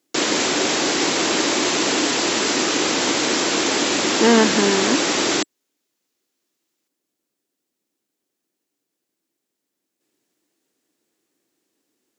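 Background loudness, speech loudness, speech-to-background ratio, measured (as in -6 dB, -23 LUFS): -18.5 LUFS, -19.5 LUFS, -1.0 dB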